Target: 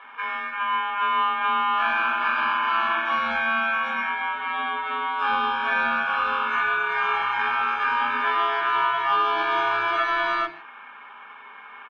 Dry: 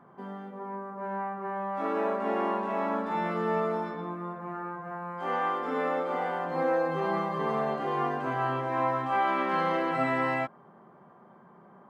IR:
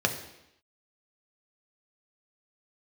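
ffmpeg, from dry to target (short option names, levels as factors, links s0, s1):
-filter_complex "[0:a]aeval=exprs='val(0)*sin(2*PI*2000*n/s)':c=same,acompressor=threshold=0.02:ratio=6,equalizer=f=125:t=o:w=1:g=-8,equalizer=f=250:t=o:w=1:g=12,equalizer=f=500:t=o:w=1:g=3,equalizer=f=1000:t=o:w=1:g=11,equalizer=f=2000:t=o:w=1:g=8,equalizer=f=4000:t=o:w=1:g=-4,acrossover=split=390[s0][s1];[s0]adelay=40[s2];[s2][s1]amix=inputs=2:normalize=0,asplit=2[s3][s4];[1:a]atrim=start_sample=2205,afade=t=out:st=0.22:d=0.01,atrim=end_sample=10143[s5];[s4][s5]afir=irnorm=-1:irlink=0,volume=0.422[s6];[s3][s6]amix=inputs=2:normalize=0"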